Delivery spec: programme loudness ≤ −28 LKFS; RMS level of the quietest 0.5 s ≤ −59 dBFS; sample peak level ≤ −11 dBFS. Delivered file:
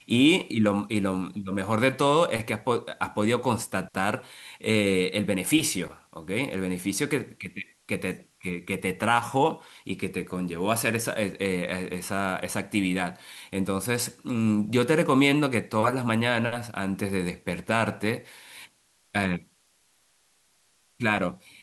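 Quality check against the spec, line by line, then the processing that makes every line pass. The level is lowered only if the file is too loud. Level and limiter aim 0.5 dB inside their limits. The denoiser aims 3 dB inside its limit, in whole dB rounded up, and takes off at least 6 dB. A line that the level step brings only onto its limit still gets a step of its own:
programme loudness −26.5 LKFS: out of spec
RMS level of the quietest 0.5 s −66 dBFS: in spec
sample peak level −7.0 dBFS: out of spec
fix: level −2 dB
brickwall limiter −11.5 dBFS

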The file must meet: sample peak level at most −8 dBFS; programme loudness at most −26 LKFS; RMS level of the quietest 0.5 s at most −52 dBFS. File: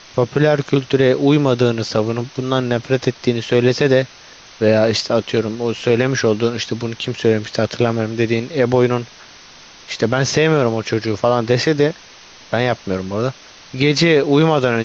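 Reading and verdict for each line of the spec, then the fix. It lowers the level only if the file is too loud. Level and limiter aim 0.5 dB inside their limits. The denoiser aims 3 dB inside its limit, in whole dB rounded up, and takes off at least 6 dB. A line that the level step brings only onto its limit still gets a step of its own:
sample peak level −3.0 dBFS: out of spec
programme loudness −17.0 LKFS: out of spec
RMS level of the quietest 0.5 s −42 dBFS: out of spec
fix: broadband denoise 6 dB, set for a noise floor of −42 dBFS
level −9.5 dB

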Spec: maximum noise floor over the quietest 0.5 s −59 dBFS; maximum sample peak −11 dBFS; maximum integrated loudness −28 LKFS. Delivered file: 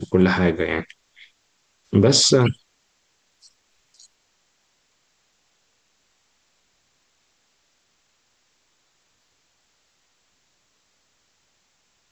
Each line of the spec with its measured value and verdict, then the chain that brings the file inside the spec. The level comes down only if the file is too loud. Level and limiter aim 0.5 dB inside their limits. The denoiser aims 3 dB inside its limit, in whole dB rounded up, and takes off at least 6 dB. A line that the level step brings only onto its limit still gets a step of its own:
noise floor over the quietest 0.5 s −67 dBFS: in spec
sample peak −5.0 dBFS: out of spec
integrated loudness −18.0 LKFS: out of spec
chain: level −10.5 dB

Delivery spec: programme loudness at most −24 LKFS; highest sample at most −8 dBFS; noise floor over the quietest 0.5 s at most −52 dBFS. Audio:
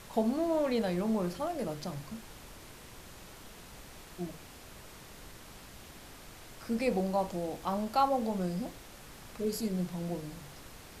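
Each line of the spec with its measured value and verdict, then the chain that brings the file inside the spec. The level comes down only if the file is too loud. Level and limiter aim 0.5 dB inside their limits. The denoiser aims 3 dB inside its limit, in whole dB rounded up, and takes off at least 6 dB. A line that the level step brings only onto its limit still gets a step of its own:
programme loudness −33.5 LKFS: in spec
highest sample −15.0 dBFS: in spec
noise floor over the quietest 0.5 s −50 dBFS: out of spec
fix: broadband denoise 6 dB, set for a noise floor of −50 dBFS

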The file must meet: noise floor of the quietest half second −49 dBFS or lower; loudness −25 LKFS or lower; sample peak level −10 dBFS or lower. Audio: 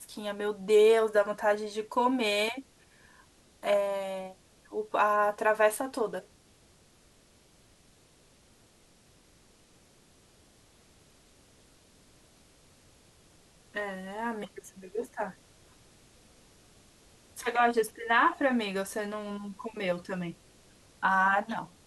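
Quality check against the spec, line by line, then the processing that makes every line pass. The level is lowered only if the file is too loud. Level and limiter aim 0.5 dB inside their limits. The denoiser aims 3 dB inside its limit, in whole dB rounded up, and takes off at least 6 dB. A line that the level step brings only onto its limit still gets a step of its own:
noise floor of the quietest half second −61 dBFS: in spec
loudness −29.0 LKFS: in spec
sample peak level −12.0 dBFS: in spec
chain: no processing needed

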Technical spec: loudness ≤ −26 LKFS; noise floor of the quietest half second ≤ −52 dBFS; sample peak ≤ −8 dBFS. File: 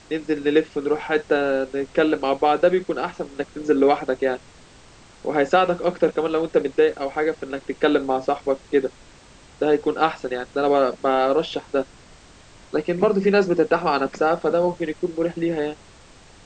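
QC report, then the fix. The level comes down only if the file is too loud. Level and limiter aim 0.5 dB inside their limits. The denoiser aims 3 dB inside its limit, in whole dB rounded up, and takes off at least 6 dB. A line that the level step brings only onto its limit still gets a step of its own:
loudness −22.0 LKFS: out of spec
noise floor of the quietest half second −48 dBFS: out of spec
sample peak −5.0 dBFS: out of spec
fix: level −4.5 dB

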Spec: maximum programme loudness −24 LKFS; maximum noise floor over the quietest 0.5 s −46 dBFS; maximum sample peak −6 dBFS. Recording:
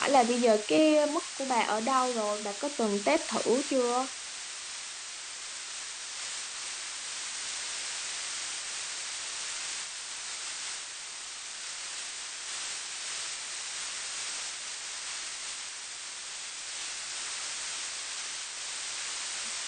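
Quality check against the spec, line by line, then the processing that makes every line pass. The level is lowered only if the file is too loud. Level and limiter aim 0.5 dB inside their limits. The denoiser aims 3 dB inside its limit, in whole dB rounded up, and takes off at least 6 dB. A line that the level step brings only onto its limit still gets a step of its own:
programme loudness −32.0 LKFS: in spec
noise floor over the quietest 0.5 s −41 dBFS: out of spec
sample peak −11.0 dBFS: in spec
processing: broadband denoise 8 dB, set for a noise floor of −41 dBFS

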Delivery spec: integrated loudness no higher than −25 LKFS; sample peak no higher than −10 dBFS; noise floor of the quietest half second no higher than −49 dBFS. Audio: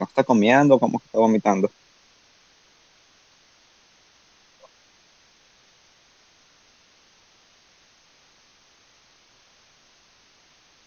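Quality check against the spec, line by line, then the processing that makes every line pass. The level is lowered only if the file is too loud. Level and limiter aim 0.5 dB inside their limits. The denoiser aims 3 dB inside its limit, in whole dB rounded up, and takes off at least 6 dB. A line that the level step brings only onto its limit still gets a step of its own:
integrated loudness −19.0 LKFS: out of spec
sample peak −3.5 dBFS: out of spec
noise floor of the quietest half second −58 dBFS: in spec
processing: level −6.5 dB
brickwall limiter −10.5 dBFS

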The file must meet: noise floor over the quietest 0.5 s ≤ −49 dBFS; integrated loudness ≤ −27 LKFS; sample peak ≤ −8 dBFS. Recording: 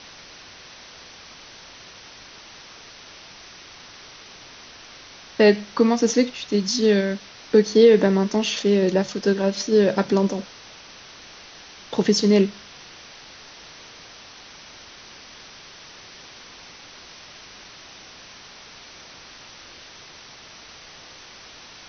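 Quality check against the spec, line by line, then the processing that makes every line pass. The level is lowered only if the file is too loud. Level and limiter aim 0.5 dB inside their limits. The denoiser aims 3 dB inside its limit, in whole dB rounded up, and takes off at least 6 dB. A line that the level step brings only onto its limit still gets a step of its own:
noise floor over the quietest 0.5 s −44 dBFS: out of spec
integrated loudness −19.5 LKFS: out of spec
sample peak −4.5 dBFS: out of spec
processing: level −8 dB

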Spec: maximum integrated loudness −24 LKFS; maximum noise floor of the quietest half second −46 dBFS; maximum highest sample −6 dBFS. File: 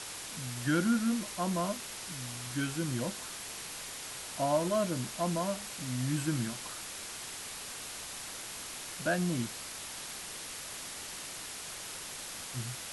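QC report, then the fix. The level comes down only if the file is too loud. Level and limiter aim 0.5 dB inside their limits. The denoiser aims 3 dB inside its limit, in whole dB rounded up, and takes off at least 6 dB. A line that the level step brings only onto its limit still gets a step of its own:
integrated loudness −35.0 LKFS: in spec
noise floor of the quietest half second −43 dBFS: out of spec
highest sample −17.0 dBFS: in spec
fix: broadband denoise 6 dB, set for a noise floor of −43 dBFS

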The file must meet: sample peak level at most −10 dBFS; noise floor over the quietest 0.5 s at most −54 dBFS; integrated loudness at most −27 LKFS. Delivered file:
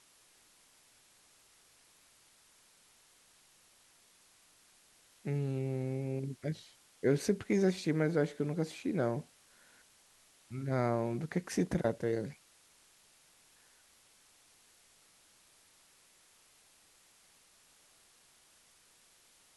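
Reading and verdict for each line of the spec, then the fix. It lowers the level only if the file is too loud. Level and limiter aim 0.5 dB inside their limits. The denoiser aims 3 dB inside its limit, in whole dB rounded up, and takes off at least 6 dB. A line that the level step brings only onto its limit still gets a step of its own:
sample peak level −17.0 dBFS: in spec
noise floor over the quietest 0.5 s −65 dBFS: in spec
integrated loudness −34.5 LKFS: in spec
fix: no processing needed

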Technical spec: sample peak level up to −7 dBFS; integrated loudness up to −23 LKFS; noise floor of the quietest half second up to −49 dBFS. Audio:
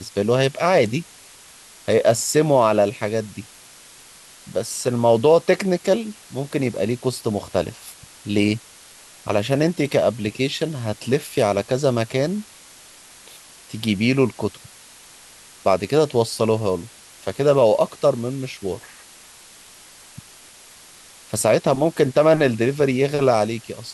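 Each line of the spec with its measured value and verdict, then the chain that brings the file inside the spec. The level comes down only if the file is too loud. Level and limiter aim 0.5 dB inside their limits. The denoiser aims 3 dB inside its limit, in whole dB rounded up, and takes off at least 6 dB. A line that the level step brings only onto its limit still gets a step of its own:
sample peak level −4.5 dBFS: out of spec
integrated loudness −20.5 LKFS: out of spec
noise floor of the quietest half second −46 dBFS: out of spec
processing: broadband denoise 6 dB, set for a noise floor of −46 dBFS
level −3 dB

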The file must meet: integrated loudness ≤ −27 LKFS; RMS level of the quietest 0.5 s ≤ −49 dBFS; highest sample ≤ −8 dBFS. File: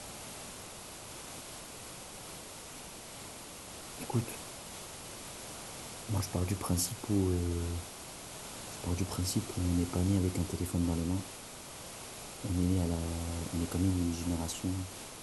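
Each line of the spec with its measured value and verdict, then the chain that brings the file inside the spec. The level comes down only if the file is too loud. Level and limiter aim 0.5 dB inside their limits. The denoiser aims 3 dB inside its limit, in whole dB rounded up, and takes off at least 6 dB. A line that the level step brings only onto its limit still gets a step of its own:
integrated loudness −36.0 LKFS: in spec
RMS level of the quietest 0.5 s −47 dBFS: out of spec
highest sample −17.0 dBFS: in spec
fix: broadband denoise 6 dB, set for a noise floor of −47 dBFS

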